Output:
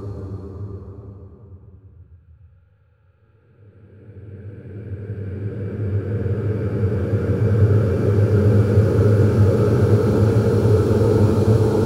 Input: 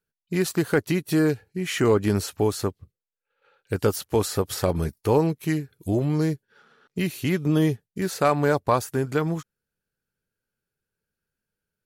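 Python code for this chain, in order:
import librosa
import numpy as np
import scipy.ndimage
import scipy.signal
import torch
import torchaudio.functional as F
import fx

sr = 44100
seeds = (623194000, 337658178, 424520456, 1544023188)

y = fx.riaa(x, sr, side='playback')
y = fx.paulstretch(y, sr, seeds[0], factor=11.0, window_s=1.0, from_s=2.96)
y = y * 10.0 ** (2.5 / 20.0)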